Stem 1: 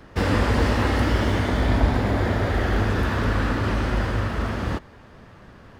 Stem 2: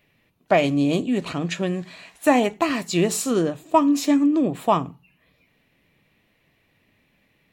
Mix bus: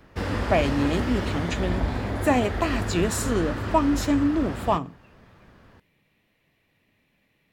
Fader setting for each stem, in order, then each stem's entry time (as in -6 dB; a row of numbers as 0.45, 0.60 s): -6.5, -4.0 dB; 0.00, 0.00 s